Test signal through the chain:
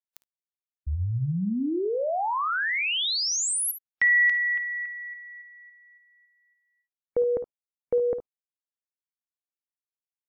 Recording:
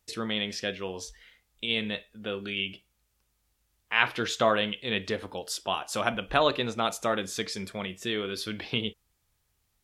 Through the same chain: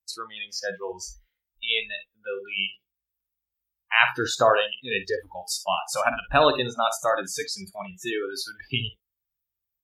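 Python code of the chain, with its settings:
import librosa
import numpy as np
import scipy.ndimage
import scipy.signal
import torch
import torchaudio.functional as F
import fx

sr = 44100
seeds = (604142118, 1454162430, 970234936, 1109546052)

y = fx.room_early_taps(x, sr, ms=(55, 71), db=(-13.0, -14.0))
y = fx.noise_reduce_blind(y, sr, reduce_db=28)
y = y * librosa.db_to_amplitude(5.0)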